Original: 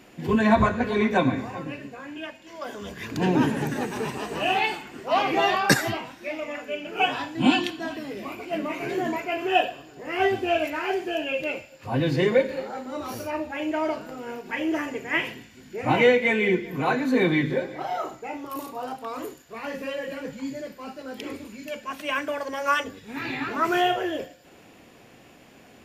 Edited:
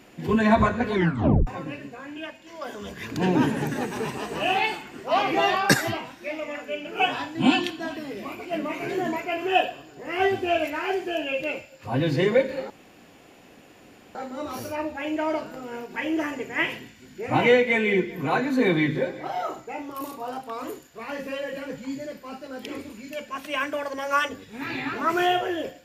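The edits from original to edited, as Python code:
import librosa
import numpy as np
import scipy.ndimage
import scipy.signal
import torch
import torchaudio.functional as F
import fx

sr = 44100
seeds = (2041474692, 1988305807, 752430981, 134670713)

y = fx.edit(x, sr, fx.tape_stop(start_s=0.94, length_s=0.53),
    fx.insert_room_tone(at_s=12.7, length_s=1.45), tone=tone)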